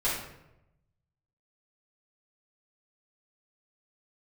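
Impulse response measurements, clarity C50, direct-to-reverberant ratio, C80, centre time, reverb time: 2.0 dB, -10.5 dB, 6.0 dB, 52 ms, 0.90 s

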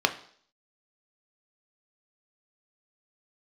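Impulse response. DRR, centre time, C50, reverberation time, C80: 6.0 dB, 8 ms, 14.0 dB, 0.55 s, 17.5 dB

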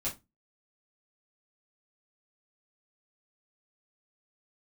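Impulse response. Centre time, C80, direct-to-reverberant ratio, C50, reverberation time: 21 ms, 22.0 dB, -8.0 dB, 12.0 dB, 0.20 s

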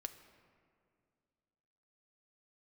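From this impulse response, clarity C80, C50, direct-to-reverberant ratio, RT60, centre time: 12.0 dB, 11.0 dB, 8.0 dB, 2.3 s, 16 ms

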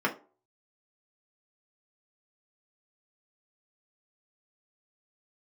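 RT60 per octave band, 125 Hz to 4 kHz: 0.30, 0.35, 0.40, 0.40, 0.25, 0.20 s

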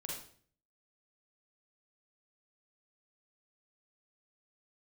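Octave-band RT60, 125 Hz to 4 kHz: 0.75, 0.60, 0.55, 0.45, 0.45, 0.45 s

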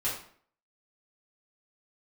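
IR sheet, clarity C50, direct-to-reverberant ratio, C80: 5.0 dB, -11.0 dB, 9.0 dB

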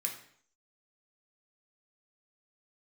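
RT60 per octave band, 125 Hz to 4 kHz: 0.60, 0.60, 0.60, 0.60, 0.60, 0.55 s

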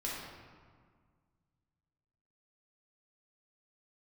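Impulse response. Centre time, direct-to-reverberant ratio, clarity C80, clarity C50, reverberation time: 93 ms, -6.0 dB, 1.5 dB, -1.0 dB, 1.8 s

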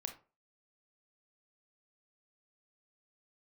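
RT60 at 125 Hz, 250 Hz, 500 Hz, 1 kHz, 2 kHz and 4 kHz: 0.35, 0.35, 0.35, 0.35, 0.25, 0.20 s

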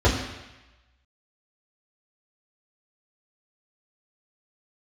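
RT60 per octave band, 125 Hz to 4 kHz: 0.95, 0.95, 0.95, 1.1, 1.2, 1.1 s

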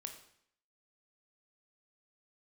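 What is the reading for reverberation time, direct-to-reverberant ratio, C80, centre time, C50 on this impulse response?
0.65 s, 4.5 dB, 11.0 dB, 17 ms, 8.0 dB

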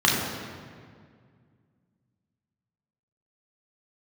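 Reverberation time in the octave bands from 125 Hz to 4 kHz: 2.9, 2.6, 2.1, 1.9, 1.7, 1.3 s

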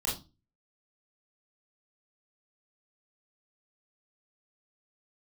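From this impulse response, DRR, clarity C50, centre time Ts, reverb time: -5.5 dB, 6.5 dB, 37 ms, 0.30 s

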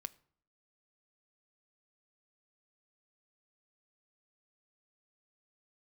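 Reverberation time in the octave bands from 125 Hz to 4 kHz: 0.70, 0.70, 0.60, 0.60, 0.45, 0.35 s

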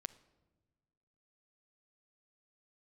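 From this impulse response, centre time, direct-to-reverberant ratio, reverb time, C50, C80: 3 ms, 13.5 dB, not exponential, 17.5 dB, 19.5 dB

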